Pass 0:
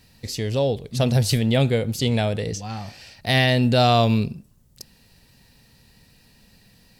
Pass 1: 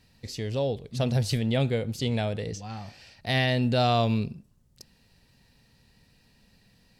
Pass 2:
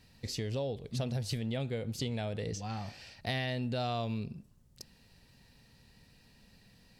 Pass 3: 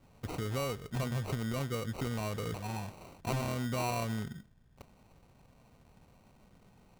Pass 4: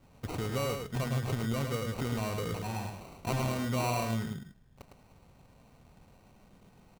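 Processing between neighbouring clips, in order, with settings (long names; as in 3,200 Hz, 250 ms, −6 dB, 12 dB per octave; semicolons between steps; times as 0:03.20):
high-shelf EQ 9,200 Hz −9.5 dB; level −6 dB
downward compressor 5 to 1, threshold −32 dBFS, peak gain reduction 11.5 dB
decimation without filtering 26×
single-tap delay 107 ms −5.5 dB; level +1.5 dB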